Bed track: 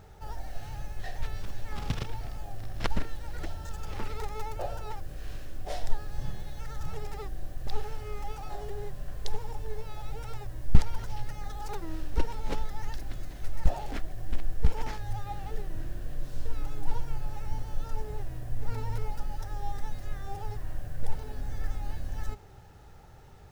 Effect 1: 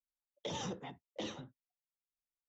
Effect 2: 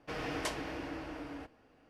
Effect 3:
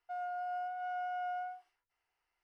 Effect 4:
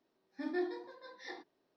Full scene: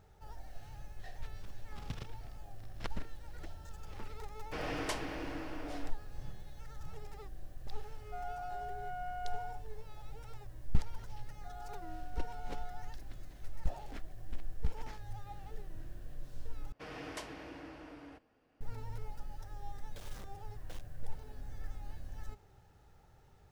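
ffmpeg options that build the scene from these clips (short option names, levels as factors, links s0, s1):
-filter_complex "[2:a]asplit=2[s0][s1];[3:a]asplit=2[s2][s3];[0:a]volume=0.299[s4];[1:a]acrusher=bits=5:mix=0:aa=0.000001[s5];[s4]asplit=2[s6][s7];[s6]atrim=end=16.724[s8];[s1]atrim=end=1.89,asetpts=PTS-STARTPTS,volume=0.422[s9];[s7]atrim=start=18.606[s10];[s0]atrim=end=1.89,asetpts=PTS-STARTPTS,volume=0.891,afade=t=in:d=0.004:c=hsin,afade=t=out:st=1.886:d=0.004:c=hsin,adelay=4440[s11];[s2]atrim=end=2.43,asetpts=PTS-STARTPTS,volume=0.631,afade=t=in:d=0.004:c=hsin,afade=t=out:st=2.426:d=0.004:c=hsin,adelay=8030[s12];[s3]atrim=end=2.43,asetpts=PTS-STARTPTS,volume=0.251,afade=t=in:d=0.004:c=hsin,afade=t=out:st=2.426:d=0.004:c=hsin,adelay=11350[s13];[s5]atrim=end=2.48,asetpts=PTS-STARTPTS,volume=0.188,afade=t=in:d=0.004:c=hsin,afade=t=out:st=2.476:d=0.004:c=hsin,adelay=19510[s14];[s8][s9]acrossfade=d=0.004:c1=hsin:c2=hsin[s15];[s15][s10]acrossfade=d=0.004:c1=hsin:c2=hsin[s16];[s16][s11][s12][s13][s14]amix=inputs=5:normalize=0"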